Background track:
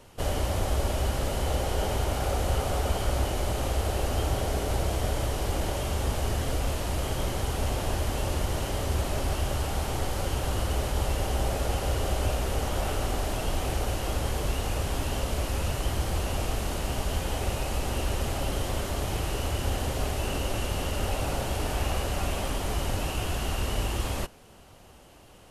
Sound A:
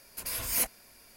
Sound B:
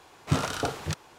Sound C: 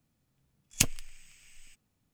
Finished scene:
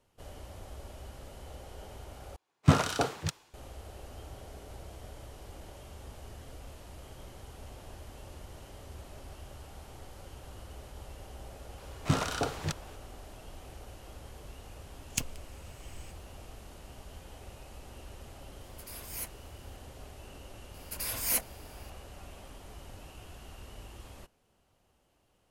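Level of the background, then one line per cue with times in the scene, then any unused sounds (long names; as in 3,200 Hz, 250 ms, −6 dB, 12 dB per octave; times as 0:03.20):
background track −19 dB
0:02.36: overwrite with B −0.5 dB + multiband upward and downward expander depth 100%
0:11.78: mix in B −2.5 dB
0:14.37: mix in C −8.5 dB + automatic gain control
0:18.61: mix in A −11.5 dB
0:20.74: mix in A −1 dB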